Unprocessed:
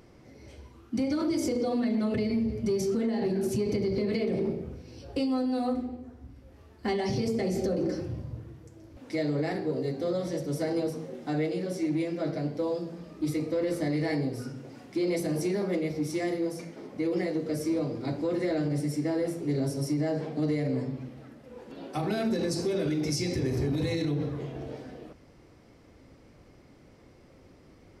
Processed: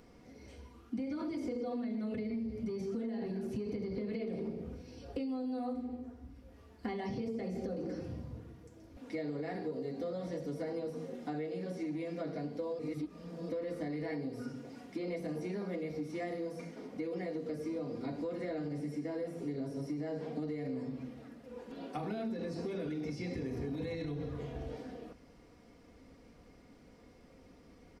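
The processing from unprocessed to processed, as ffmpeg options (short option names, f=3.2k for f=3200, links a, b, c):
-filter_complex "[0:a]asplit=3[a][b][c];[a]afade=t=out:st=23.93:d=0.02[d];[b]asubboost=boost=4:cutoff=97,afade=t=in:st=23.93:d=0.02,afade=t=out:st=24.77:d=0.02[e];[c]afade=t=in:st=24.77:d=0.02[f];[d][e][f]amix=inputs=3:normalize=0,asplit=3[g][h][i];[g]atrim=end=12.792[j];[h]atrim=start=12.788:end=13.492,asetpts=PTS-STARTPTS,areverse[k];[i]atrim=start=13.488[l];[j][k]acrossfade=d=0.004:c1=hsin:c2=hsin[m];[m][l]acrossfade=d=0.004:c1=hsin:c2=hsin,acrossover=split=3300[n][o];[o]acompressor=threshold=-57dB:ratio=4:attack=1:release=60[p];[n][p]amix=inputs=2:normalize=0,aecho=1:1:4.2:0.46,acompressor=threshold=-31dB:ratio=6,volume=-4dB"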